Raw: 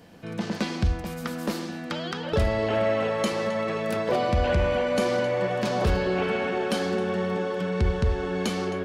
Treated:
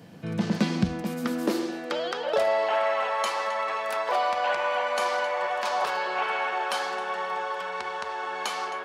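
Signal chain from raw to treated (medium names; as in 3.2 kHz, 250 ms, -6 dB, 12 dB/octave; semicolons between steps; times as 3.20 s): high-pass sweep 130 Hz -> 910 Hz, 0.42–2.80 s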